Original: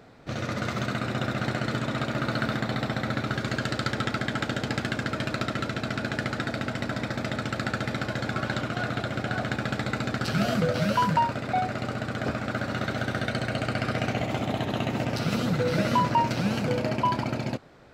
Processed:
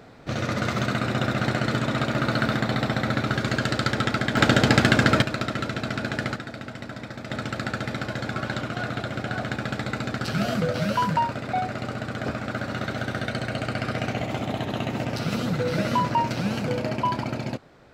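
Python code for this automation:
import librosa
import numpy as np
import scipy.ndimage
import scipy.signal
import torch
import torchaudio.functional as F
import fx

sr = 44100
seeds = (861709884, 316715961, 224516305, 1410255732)

y = fx.gain(x, sr, db=fx.steps((0.0, 4.0), (4.37, 11.0), (5.22, 1.5), (6.36, -6.0), (7.3, 0.0)))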